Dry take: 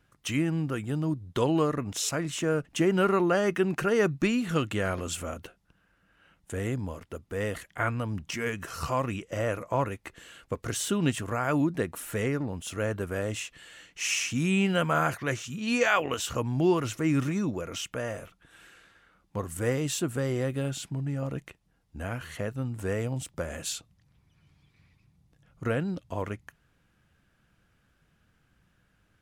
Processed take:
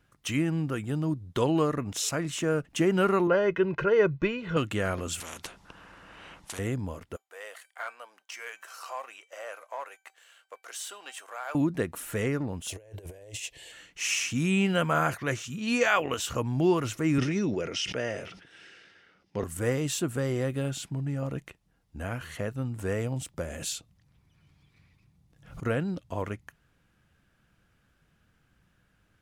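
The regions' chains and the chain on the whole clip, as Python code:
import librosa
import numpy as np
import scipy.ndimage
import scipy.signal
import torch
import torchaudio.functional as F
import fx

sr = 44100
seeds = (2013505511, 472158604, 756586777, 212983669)

y = fx.chain(x, sr, fx.air_absorb(metres=260.0),
    fx.comb(ms=2.0, depth=0.7), at=(3.27, 4.57))
y = fx.chain(y, sr, fx.lowpass(hz=8400.0, slope=12),
    fx.peak_eq(hz=980.0, db=8.0, octaves=0.51),
    fx.spectral_comp(ratio=4.0), at=(5.2, 6.59))
y = fx.chain(y, sr, fx.leveller(passes=1),
    fx.highpass(hz=590.0, slope=24),
    fx.comb_fb(f0_hz=770.0, decay_s=0.3, harmonics='all', damping=0.0, mix_pct=70), at=(7.16, 11.55))
y = fx.chain(y, sr, fx.highpass(hz=70.0, slope=6),
    fx.over_compress(threshold_db=-38.0, ratio=-0.5),
    fx.fixed_phaser(hz=540.0, stages=4), at=(12.68, 13.72))
y = fx.chain(y, sr, fx.cabinet(low_hz=110.0, low_slope=12, high_hz=8300.0, hz=(400.0, 1100.0, 2000.0, 2900.0, 5200.0, 7500.0), db=(6, -7, 5, 5, 10, -8)),
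    fx.sustainer(db_per_s=69.0), at=(17.18, 19.44))
y = fx.chain(y, sr, fx.dynamic_eq(hz=1200.0, q=1.1, threshold_db=-54.0, ratio=4.0, max_db=-5),
    fx.pre_swell(db_per_s=100.0), at=(23.39, 25.64))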